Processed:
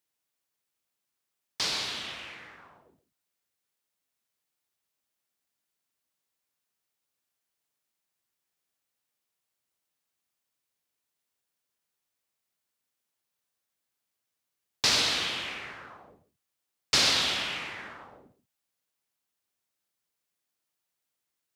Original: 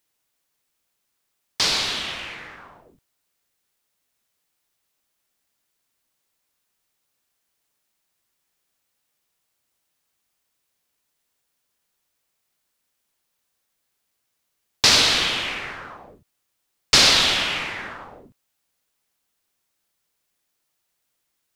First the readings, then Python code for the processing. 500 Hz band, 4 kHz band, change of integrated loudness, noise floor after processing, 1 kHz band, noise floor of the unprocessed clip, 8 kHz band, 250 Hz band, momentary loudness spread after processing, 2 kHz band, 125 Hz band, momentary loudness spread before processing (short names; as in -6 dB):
-9.0 dB, -9.0 dB, -9.0 dB, -84 dBFS, -9.0 dB, -76 dBFS, -9.0 dB, -8.5 dB, 20 LU, -9.0 dB, -9.5 dB, 20 LU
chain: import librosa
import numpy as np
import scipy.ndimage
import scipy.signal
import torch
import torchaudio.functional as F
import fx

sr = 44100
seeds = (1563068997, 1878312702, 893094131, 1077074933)

y = scipy.signal.sosfilt(scipy.signal.butter(2, 65.0, 'highpass', fs=sr, output='sos'), x)
y = y + 10.0 ** (-15.0 / 20.0) * np.pad(y, (int(134 * sr / 1000.0), 0))[:len(y)]
y = F.gain(torch.from_numpy(y), -9.0).numpy()